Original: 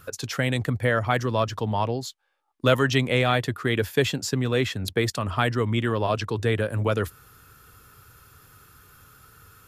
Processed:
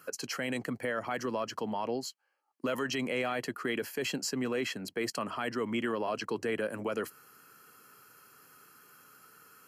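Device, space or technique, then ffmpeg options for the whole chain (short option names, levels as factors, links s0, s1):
PA system with an anti-feedback notch: -af "highpass=f=190:w=0.5412,highpass=f=190:w=1.3066,asuperstop=centerf=3600:order=8:qfactor=5.9,alimiter=limit=0.106:level=0:latency=1:release=32,volume=0.631"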